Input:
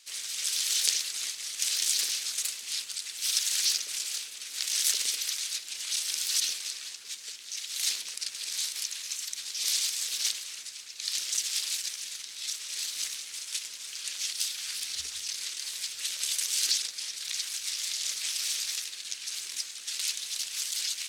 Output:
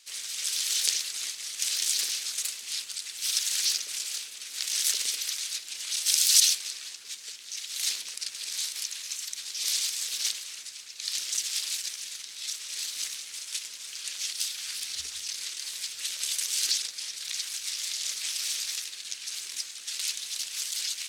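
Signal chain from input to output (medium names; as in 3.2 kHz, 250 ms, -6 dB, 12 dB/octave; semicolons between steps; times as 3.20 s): 6.06–6.55 s: treble shelf 2.6 kHz +10 dB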